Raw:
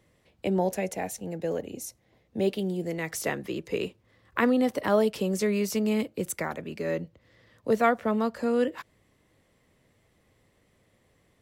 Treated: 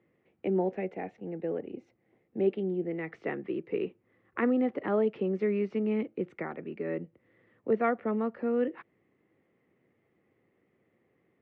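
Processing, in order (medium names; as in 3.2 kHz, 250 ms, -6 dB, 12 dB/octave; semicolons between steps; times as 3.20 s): cabinet simulation 170–2200 Hz, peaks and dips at 360 Hz +5 dB, 610 Hz -6 dB, 1 kHz -7 dB, 1.6 kHz -5 dB; trim -2.5 dB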